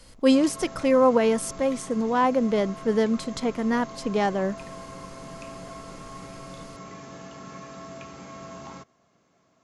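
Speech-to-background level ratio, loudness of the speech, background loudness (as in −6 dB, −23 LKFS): 17.5 dB, −23.5 LKFS, −41.0 LKFS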